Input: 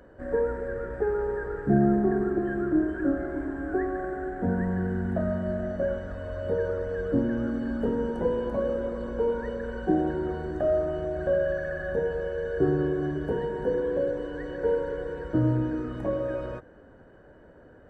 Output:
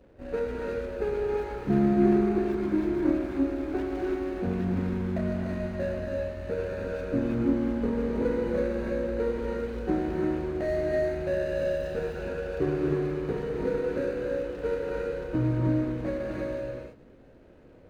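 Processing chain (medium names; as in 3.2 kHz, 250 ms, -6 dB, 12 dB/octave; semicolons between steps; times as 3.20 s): median filter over 41 samples; gated-style reverb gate 360 ms rising, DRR -1 dB; trim -3 dB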